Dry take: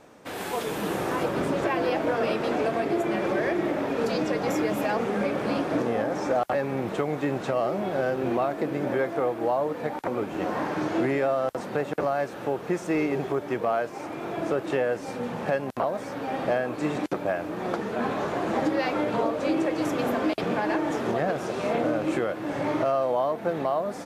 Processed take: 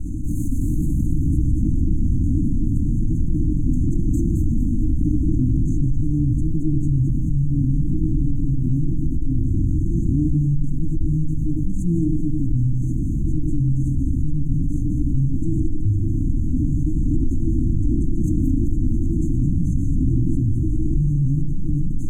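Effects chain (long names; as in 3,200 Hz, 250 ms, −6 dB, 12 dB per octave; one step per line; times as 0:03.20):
lower of the sound and its delayed copy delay 2.6 ms
linear-phase brick-wall band-stop 290–5,700 Hz
RIAA equalisation playback
echo with a time of its own for lows and highs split 630 Hz, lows 106 ms, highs 235 ms, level −7 dB
wrong playback speed 44.1 kHz file played as 48 kHz
envelope flattener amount 70%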